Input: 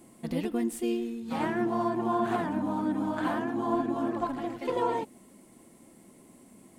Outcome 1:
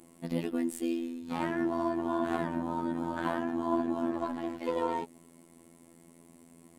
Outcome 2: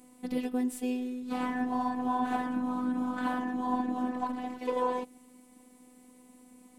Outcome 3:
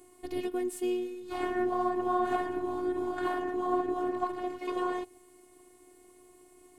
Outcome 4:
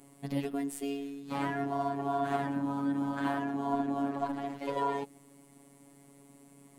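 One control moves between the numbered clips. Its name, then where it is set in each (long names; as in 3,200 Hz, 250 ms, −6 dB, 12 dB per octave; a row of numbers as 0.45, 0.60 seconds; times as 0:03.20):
phases set to zero, frequency: 84, 250, 360, 140 Hertz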